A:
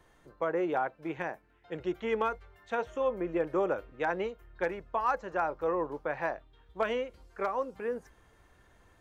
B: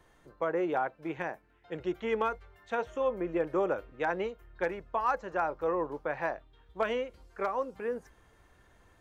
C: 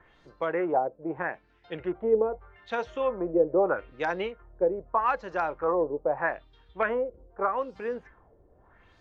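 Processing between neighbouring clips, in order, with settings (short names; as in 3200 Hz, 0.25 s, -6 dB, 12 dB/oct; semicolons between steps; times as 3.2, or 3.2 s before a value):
nothing audible
LFO low-pass sine 0.8 Hz 480–5200 Hz; gain +1.5 dB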